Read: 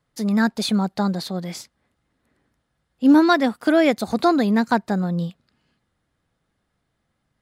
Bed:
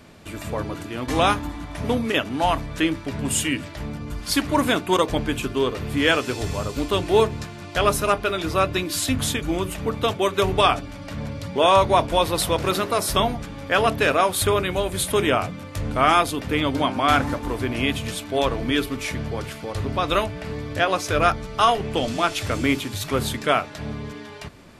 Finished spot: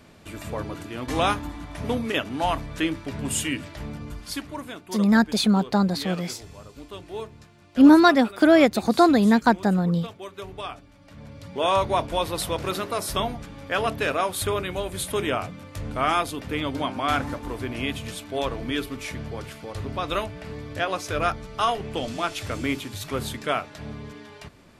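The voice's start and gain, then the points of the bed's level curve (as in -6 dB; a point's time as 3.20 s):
4.75 s, +1.0 dB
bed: 4.05 s -3.5 dB
4.67 s -17 dB
10.96 s -17 dB
11.68 s -5.5 dB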